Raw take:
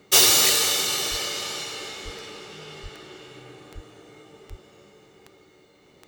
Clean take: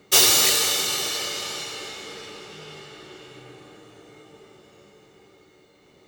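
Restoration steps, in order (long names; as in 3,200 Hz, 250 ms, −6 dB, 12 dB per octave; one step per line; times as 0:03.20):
click removal
high-pass at the plosives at 0:01.10/0:02.04/0:02.82/0:03.74/0:04.49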